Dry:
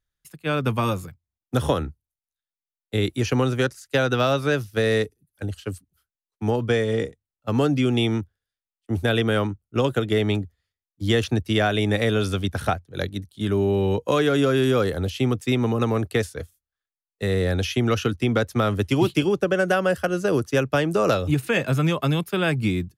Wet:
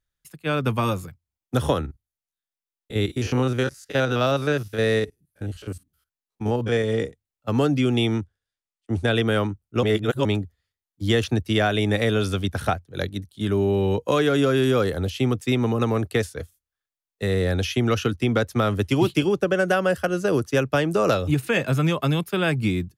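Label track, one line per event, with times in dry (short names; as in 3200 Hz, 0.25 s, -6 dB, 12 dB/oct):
1.810000	6.840000	stepped spectrum every 50 ms
8.180000	9.170000	steep low-pass 10000 Hz
9.830000	10.250000	reverse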